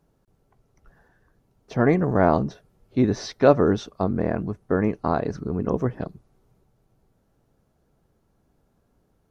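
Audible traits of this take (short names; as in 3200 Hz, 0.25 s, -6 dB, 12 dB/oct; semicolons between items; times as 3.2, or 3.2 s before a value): noise floor -68 dBFS; spectral tilt -5.5 dB/oct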